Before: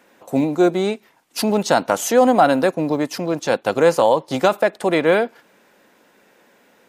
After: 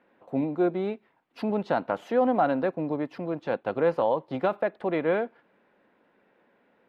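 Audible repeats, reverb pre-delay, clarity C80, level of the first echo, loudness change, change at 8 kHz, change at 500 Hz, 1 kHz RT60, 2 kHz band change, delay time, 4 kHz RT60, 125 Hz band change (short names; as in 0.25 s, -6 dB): none, none, none, none, -9.5 dB, under -35 dB, -9.0 dB, none, -11.5 dB, none, none, -8.5 dB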